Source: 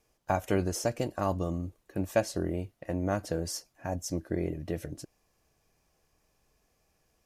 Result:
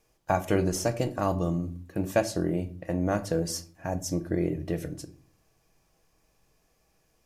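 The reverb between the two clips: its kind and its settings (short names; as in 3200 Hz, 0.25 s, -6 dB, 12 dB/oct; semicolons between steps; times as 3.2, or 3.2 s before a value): shoebox room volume 410 m³, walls furnished, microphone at 0.64 m; gain +2.5 dB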